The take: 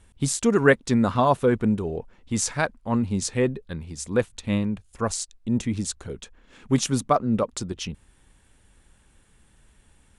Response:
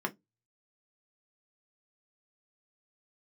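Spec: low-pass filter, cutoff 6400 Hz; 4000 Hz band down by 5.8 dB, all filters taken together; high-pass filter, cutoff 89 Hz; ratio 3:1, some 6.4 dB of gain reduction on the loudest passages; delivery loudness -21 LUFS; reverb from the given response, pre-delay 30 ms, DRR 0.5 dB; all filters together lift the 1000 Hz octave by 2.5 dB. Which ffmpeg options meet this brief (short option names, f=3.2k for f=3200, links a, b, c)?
-filter_complex "[0:a]highpass=89,lowpass=6.4k,equalizer=f=1k:t=o:g=3.5,equalizer=f=4k:t=o:g=-7,acompressor=threshold=-20dB:ratio=3,asplit=2[a][b];[1:a]atrim=start_sample=2205,adelay=30[c];[b][c]afir=irnorm=-1:irlink=0,volume=-6dB[d];[a][d]amix=inputs=2:normalize=0,volume=2dB"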